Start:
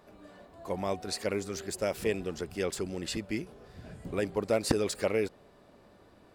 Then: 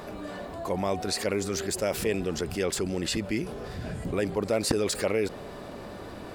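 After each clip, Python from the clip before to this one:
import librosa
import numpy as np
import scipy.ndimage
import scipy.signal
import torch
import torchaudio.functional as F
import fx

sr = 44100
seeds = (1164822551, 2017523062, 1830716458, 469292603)

y = fx.env_flatten(x, sr, amount_pct=50)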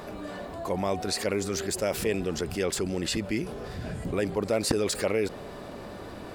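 y = x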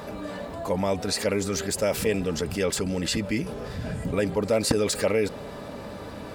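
y = fx.notch_comb(x, sr, f0_hz=360.0)
y = F.gain(torch.from_numpy(y), 4.0).numpy()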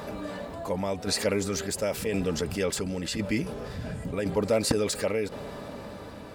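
y = fx.tremolo_shape(x, sr, shape='saw_down', hz=0.94, depth_pct=50)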